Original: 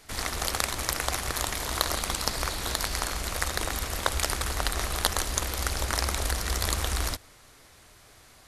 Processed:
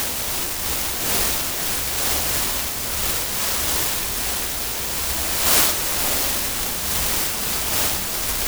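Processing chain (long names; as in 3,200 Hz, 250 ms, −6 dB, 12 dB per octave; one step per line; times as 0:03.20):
bad sample-rate conversion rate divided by 8×, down none, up zero stuff
extreme stretch with random phases 4.8×, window 0.10 s, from 0:00.65
short delay modulated by noise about 4,900 Hz, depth 0.17 ms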